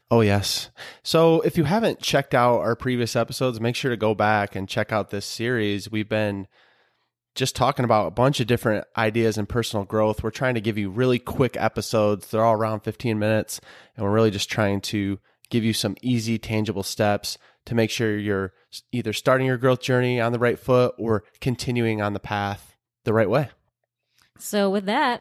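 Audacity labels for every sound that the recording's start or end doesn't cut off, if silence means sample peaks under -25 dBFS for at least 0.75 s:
7.370000	23.440000	sound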